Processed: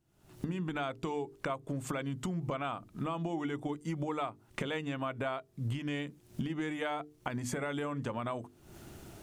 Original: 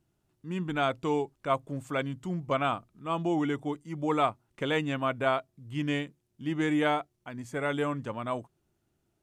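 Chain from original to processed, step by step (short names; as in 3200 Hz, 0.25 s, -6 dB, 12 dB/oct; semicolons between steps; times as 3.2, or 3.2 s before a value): recorder AGC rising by 68 dB/s; notches 50/100/150/200/250/300/350/400/450 Hz; compressor, threshold -28 dBFS, peak gain reduction 8 dB; gain -3.5 dB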